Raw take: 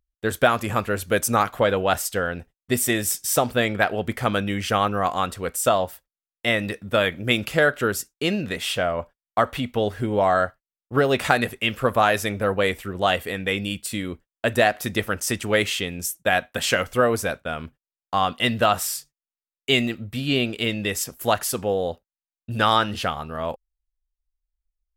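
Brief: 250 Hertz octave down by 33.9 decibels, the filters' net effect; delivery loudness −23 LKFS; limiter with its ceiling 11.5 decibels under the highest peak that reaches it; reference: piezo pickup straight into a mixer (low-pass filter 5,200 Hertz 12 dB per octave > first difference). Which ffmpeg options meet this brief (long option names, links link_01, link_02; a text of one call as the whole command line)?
ffmpeg -i in.wav -af "equalizer=frequency=250:width_type=o:gain=-7,alimiter=limit=-12.5dB:level=0:latency=1,lowpass=5200,aderivative,volume=15dB" out.wav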